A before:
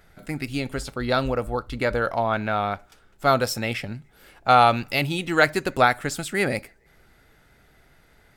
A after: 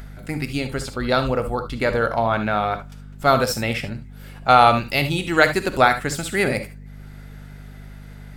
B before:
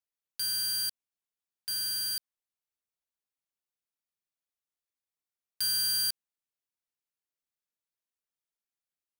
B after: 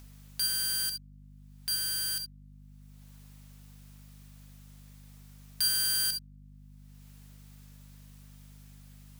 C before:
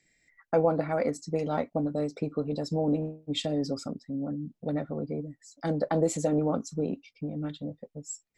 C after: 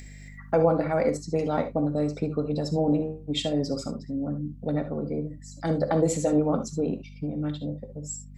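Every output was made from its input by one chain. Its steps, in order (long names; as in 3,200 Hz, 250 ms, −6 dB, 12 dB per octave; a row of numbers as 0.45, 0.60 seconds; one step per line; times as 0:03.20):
upward compression, threshold −43 dBFS
mains hum 50 Hz, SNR 15 dB
reverb whose tail is shaped and stops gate 90 ms rising, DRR 9 dB
level +2.5 dB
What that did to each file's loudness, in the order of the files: +3.0, 0.0, +3.5 LU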